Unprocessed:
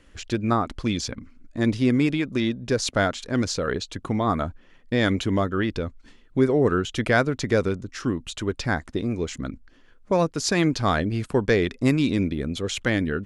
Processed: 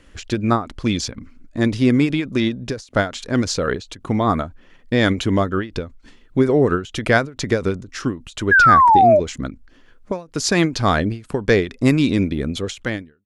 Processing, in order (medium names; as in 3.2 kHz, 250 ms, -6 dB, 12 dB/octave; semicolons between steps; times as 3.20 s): fade out at the end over 0.70 s; painted sound fall, 8.51–9.20 s, 570–1700 Hz -16 dBFS; endings held to a fixed fall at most 180 dB/s; trim +5 dB